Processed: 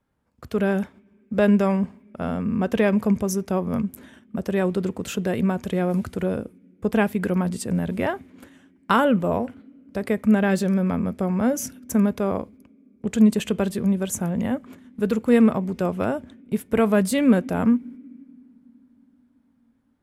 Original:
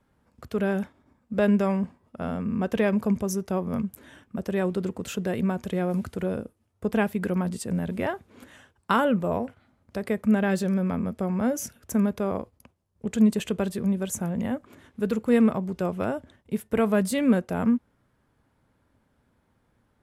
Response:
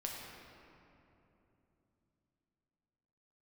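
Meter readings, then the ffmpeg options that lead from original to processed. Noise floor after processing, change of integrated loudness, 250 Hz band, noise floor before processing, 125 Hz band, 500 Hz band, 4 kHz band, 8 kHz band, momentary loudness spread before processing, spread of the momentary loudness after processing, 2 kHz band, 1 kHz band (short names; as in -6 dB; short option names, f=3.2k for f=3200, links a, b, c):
-62 dBFS, +3.5 dB, +3.5 dB, -70 dBFS, +3.5 dB, +3.5 dB, +3.5 dB, +3.5 dB, 12 LU, 12 LU, +3.5 dB, +3.5 dB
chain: -filter_complex "[0:a]agate=range=-10dB:threshold=-48dB:ratio=16:detection=peak,asplit=2[a][b];[b]asplit=3[c][d][e];[c]bandpass=f=270:t=q:w=8,volume=0dB[f];[d]bandpass=f=2.29k:t=q:w=8,volume=-6dB[g];[e]bandpass=f=3.01k:t=q:w=8,volume=-9dB[h];[f][g][h]amix=inputs=3:normalize=0[i];[1:a]atrim=start_sample=2205[j];[i][j]afir=irnorm=-1:irlink=0,volume=-12.5dB[k];[a][k]amix=inputs=2:normalize=0,volume=3.5dB"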